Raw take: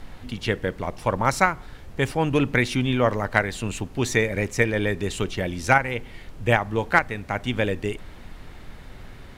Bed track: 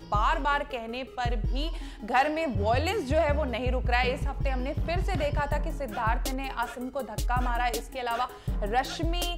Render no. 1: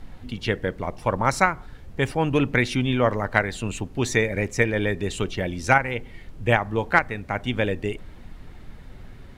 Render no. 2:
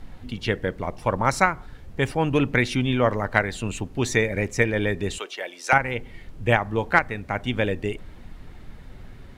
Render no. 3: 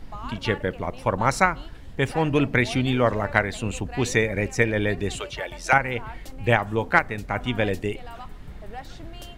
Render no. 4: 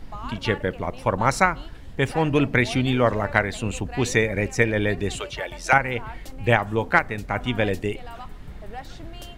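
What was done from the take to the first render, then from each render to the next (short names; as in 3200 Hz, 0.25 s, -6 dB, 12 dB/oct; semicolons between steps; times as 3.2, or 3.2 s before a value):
denoiser 6 dB, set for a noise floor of -43 dBFS
5.18–5.73 Bessel high-pass 650 Hz, order 4
add bed track -12 dB
gain +1 dB; limiter -3 dBFS, peak gain reduction 1.5 dB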